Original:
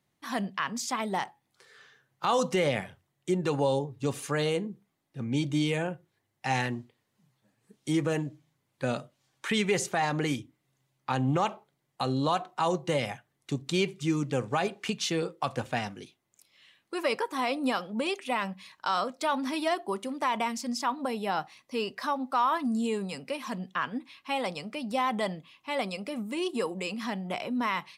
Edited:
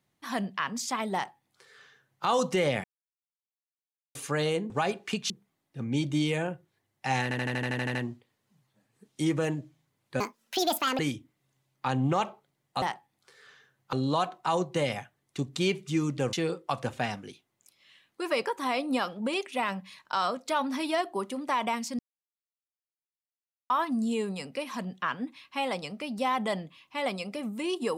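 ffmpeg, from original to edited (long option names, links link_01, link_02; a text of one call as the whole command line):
ffmpeg -i in.wav -filter_complex "[0:a]asplit=21[link_01][link_02][link_03][link_04][link_05][link_06][link_07][link_08][link_09][link_10][link_11][link_12][link_13][link_14][link_15][link_16][link_17][link_18][link_19][link_20][link_21];[link_01]atrim=end=2.84,asetpts=PTS-STARTPTS,afade=type=out:start_time=2.836:duration=0.004:curve=hsin[link_22];[link_02]atrim=start=2.84:end=4.15,asetpts=PTS-STARTPTS,volume=0[link_23];[link_03]atrim=start=4.15:end=4.702,asetpts=PTS-STARTPTS,afade=type=in:duration=0.004:curve=hsin[link_24];[link_04]atrim=start=14.458:end=15.062[link_25];[link_05]atrim=start=4.698:end=6.712[link_26];[link_06]atrim=start=6.628:end=6.712[link_27];[link_07]atrim=start=6.628:end=6.712[link_28];[link_08]atrim=start=6.628:end=6.712[link_29];[link_09]atrim=start=6.628:end=6.712[link_30];[link_10]atrim=start=6.628:end=6.712[link_31];[link_11]atrim=start=6.628:end=6.712[link_32];[link_12]atrim=start=6.628:end=6.712[link_33];[link_13]atrim=start=6.628:end=6.712[link_34];[link_14]atrim=start=6.628:end=8.884[link_35];[link_15]atrim=start=8.88:end=10.23,asetpts=PTS-STARTPTS,asetrate=75411,aresample=44100[link_36];[link_16]atrim=start=10.226:end=12.062[link_37];[link_17]atrim=start=1.138:end=2.252[link_38];[link_18]atrim=start=12.058:end=14.462[link_39];[link_19]atrim=start=15.058:end=20.72,asetpts=PTS-STARTPTS,afade=type=out:start_time=5.658:duration=0.004:curve=hsin[link_40];[link_20]atrim=start=20.72:end=22.43,asetpts=PTS-STARTPTS,volume=0[link_41];[link_21]atrim=start=22.43,asetpts=PTS-STARTPTS,afade=type=in:duration=0.004:curve=hsin[link_42];[link_22][link_23][link_24]concat=n=3:v=0:a=1[link_43];[link_43][link_25]acrossfade=duration=0.004:curve1=hsin:curve2=hsin[link_44];[link_44][link_26]acrossfade=duration=0.004:curve1=hsin:curve2=hsin[link_45];[link_45][link_27]acrossfade=duration=0.004:curve1=hsin:curve2=hsin[link_46];[link_46][link_28]acrossfade=duration=0.004:curve1=hsin:curve2=hsin[link_47];[link_47][link_29]acrossfade=duration=0.004:curve1=hsin:curve2=hsin[link_48];[link_48][link_30]acrossfade=duration=0.004:curve1=hsin:curve2=hsin[link_49];[link_49][link_31]acrossfade=duration=0.004:curve1=hsin:curve2=hsin[link_50];[link_50][link_32]acrossfade=duration=0.004:curve1=hsin:curve2=hsin[link_51];[link_51][link_33]acrossfade=duration=0.004:curve1=hsin:curve2=hsin[link_52];[link_52][link_34]acrossfade=duration=0.004:curve1=hsin:curve2=hsin[link_53];[link_53][link_35]acrossfade=duration=0.004:curve1=hsin:curve2=hsin[link_54];[link_54][link_36]acrossfade=duration=0.004:curve1=hsin:curve2=hsin[link_55];[link_55][link_37]acrossfade=duration=0.004:curve1=hsin:curve2=hsin[link_56];[link_56][link_38]acrossfade=duration=0.004:curve1=hsin:curve2=hsin[link_57];[link_57][link_39]acrossfade=duration=0.004:curve1=hsin:curve2=hsin[link_58];[link_40][link_41][link_42]concat=n=3:v=0:a=1[link_59];[link_58][link_59]acrossfade=duration=0.004:curve1=hsin:curve2=hsin" out.wav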